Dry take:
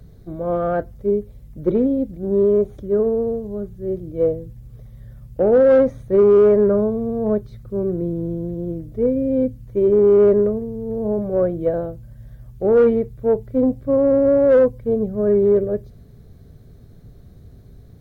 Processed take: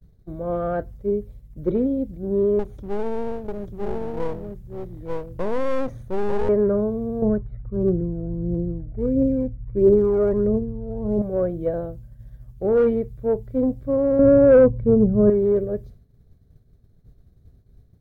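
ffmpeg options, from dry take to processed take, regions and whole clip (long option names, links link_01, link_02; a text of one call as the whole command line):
ffmpeg -i in.wav -filter_complex "[0:a]asettb=1/sr,asplit=3[link_01][link_02][link_03];[link_01]atrim=end=2.594[link_04];[link_02]atrim=start=2.59:end=6.49,asetpts=PTS-STARTPTS,afade=type=in:duration=0.004:curve=qsin,afade=type=out:start_time=3.896:duration=0.004:curve=qsin,aecho=1:1:892:0.631,atrim=end_sample=171990,acompressor=threshold=-16dB:ratio=2.5:attack=3.2:release=140:knee=1:detection=peak,aeval=exprs='clip(val(0),-1,0.0266)':channel_layout=same[link_05];[link_03]atrim=start=6.486[link_06];[link_04][link_05]acrossfade=duration=0.004:curve1=hsin:curve2=qsin[link_07];[link_07][link_06]acrossfade=duration=0.004:curve1=qsin:curve2=hsin,asettb=1/sr,asplit=3[link_08][link_09][link_10];[link_08]atrim=end=7.224[link_11];[link_09]atrim=start=7.22:end=11.22,asetpts=PTS-STARTPTS,afade=type=in:duration=0.004:curve=qsin,afade=type=out:start_time=3.996:duration=0.004:curve=qsin,lowpass=frequency=2000:width=0.5412,lowpass=frequency=2000:width=1.3066,aphaser=in_gain=1:out_gain=1:delay=1.6:decay=0.55:speed=1.5:type=triangular[link_12];[link_10]atrim=start=11.216[link_13];[link_11][link_12]acrossfade=duration=0.004:curve1=hsin:curve2=qsin[link_14];[link_14][link_13]acrossfade=duration=0.004:curve1=qsin:curve2=hsin,asettb=1/sr,asplit=3[link_15][link_16][link_17];[link_15]atrim=end=14.194[link_18];[link_16]atrim=start=14.19:end=15.3,asetpts=PTS-STARTPTS,afade=type=in:duration=0.004:curve=qsin,afade=type=out:start_time=1.106:duration=0.004:curve=qsin,lowpass=frequency=1300:poles=1,acontrast=34,equalizer=frequency=130:width_type=o:width=2.2:gain=6.5[link_19];[link_17]atrim=start=15.296[link_20];[link_18][link_19]acrossfade=duration=0.004:curve1=hsin:curve2=qsin[link_21];[link_21][link_20]acrossfade=duration=0.004:curve1=qsin:curve2=hsin,agate=range=-33dB:threshold=-35dB:ratio=3:detection=peak,lowshelf=frequency=93:gain=7.5,volume=-4.5dB" out.wav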